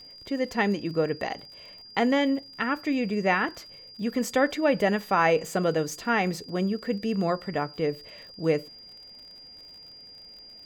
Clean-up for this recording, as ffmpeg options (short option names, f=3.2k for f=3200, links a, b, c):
-af "adeclick=t=4,bandreject=f=4.8k:w=30"